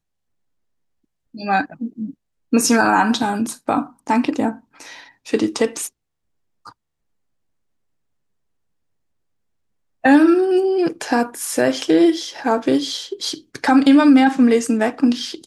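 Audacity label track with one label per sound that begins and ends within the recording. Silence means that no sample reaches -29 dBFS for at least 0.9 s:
1.350000	6.690000	sound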